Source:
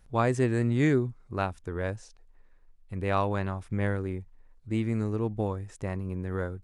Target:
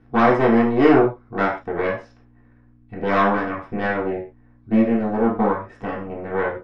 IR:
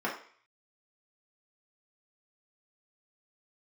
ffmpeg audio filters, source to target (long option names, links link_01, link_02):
-filter_complex "[0:a]aeval=exprs='val(0)+0.00224*(sin(2*PI*60*n/s)+sin(2*PI*2*60*n/s)/2+sin(2*PI*3*60*n/s)/3+sin(2*PI*4*60*n/s)/4+sin(2*PI*5*60*n/s)/5)':channel_layout=same,aeval=exprs='0.237*(cos(1*acos(clip(val(0)/0.237,-1,1)))-cos(1*PI/2))+0.0211*(cos(5*acos(clip(val(0)/0.237,-1,1)))-cos(5*PI/2))+0.0944*(cos(6*acos(clip(val(0)/0.237,-1,1)))-cos(6*PI/2))':channel_layout=same,lowpass=4000[link_01];[1:a]atrim=start_sample=2205,afade=type=out:start_time=0.19:duration=0.01,atrim=end_sample=8820[link_02];[link_01][link_02]afir=irnorm=-1:irlink=0,volume=-2.5dB"